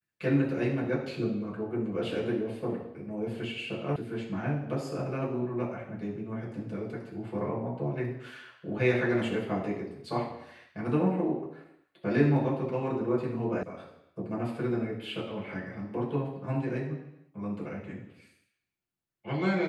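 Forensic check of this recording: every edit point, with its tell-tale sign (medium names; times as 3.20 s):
3.96 s: sound stops dead
13.63 s: sound stops dead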